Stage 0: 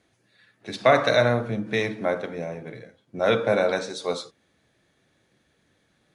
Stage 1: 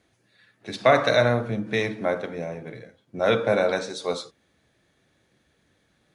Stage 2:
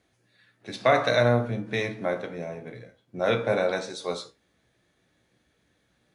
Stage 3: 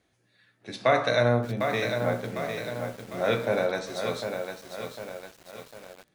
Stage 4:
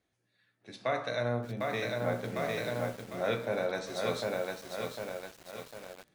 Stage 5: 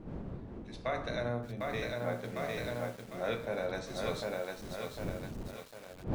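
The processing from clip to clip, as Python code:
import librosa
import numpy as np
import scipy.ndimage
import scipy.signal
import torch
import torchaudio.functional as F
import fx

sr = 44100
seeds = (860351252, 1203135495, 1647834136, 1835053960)

y1 = fx.peak_eq(x, sr, hz=61.0, db=4.5, octaves=0.78)
y2 = fx.comb_fb(y1, sr, f0_hz=60.0, decay_s=0.22, harmonics='all', damping=0.0, mix_pct=70)
y2 = F.gain(torch.from_numpy(y2), 1.5).numpy()
y3 = fx.echo_crushed(y2, sr, ms=752, feedback_pct=55, bits=7, wet_db=-6.0)
y3 = F.gain(torch.from_numpy(y3), -1.5).numpy()
y4 = fx.rider(y3, sr, range_db=5, speed_s=0.5)
y4 = F.gain(torch.from_numpy(y4), -5.5).numpy()
y5 = fx.dmg_wind(y4, sr, seeds[0], corner_hz=260.0, level_db=-41.0)
y5 = F.gain(torch.from_numpy(y5), -3.5).numpy()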